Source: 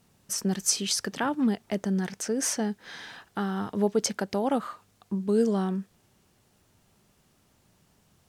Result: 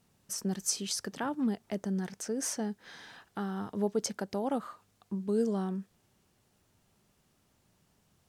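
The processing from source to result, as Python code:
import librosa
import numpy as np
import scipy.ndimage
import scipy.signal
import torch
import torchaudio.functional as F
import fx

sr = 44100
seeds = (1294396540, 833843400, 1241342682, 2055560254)

y = fx.dynamic_eq(x, sr, hz=2500.0, q=0.81, threshold_db=-45.0, ratio=4.0, max_db=-4)
y = y * 10.0 ** (-5.5 / 20.0)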